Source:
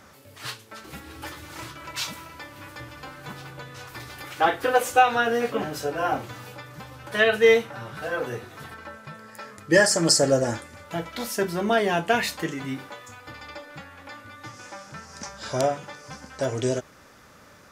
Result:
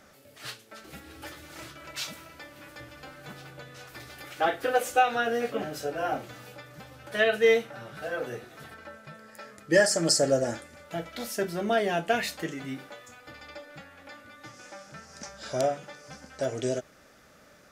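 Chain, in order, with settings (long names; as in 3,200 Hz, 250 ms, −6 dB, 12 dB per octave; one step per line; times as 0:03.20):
thirty-one-band graphic EQ 100 Hz −11 dB, 630 Hz +4 dB, 1,000 Hz −8 dB
level −4.5 dB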